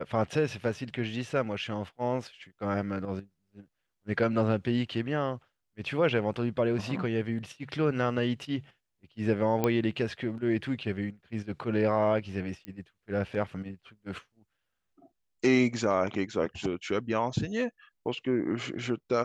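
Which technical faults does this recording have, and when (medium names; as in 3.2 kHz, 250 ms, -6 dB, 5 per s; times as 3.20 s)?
9.64 s: pop -13 dBFS
12.65 s: pop -25 dBFS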